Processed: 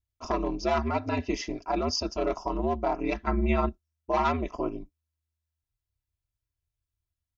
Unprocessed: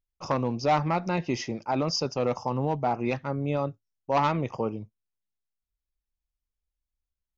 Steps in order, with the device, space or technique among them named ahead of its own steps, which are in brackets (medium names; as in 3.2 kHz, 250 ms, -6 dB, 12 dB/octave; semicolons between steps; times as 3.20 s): 3.27–3.69 s: ten-band graphic EQ 125 Hz +8 dB, 250 Hz +3 dB, 500 Hz -4 dB, 1 kHz +6 dB, 2 kHz +11 dB; ring-modulated robot voice (ring modulator 79 Hz; comb 3 ms, depth 71%)